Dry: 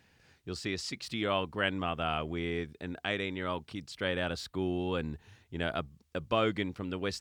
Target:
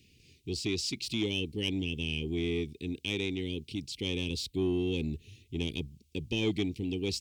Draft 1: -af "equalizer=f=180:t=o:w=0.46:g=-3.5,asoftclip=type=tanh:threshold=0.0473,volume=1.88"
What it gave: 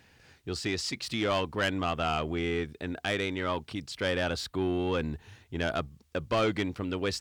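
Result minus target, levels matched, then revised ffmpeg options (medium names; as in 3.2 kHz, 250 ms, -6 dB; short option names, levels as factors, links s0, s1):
1 kHz band +19.0 dB
-af "asuperstop=centerf=1000:order=12:qfactor=0.52,equalizer=f=180:t=o:w=0.46:g=-3.5,asoftclip=type=tanh:threshold=0.0473,volume=1.88"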